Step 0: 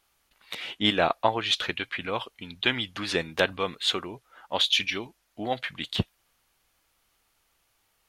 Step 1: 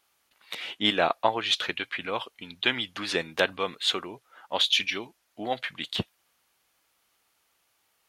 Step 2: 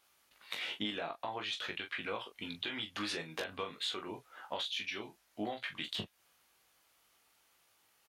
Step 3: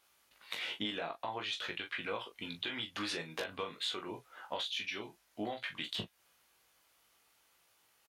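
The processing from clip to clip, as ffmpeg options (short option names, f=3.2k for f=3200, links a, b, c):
-af "highpass=f=220:p=1"
-af "alimiter=limit=-17dB:level=0:latency=1:release=27,acompressor=threshold=-35dB:ratio=10,aecho=1:1:19|42:0.562|0.335,volume=-1.5dB"
-filter_complex "[0:a]asplit=2[a][b];[b]adelay=17,volume=-13.5dB[c];[a][c]amix=inputs=2:normalize=0"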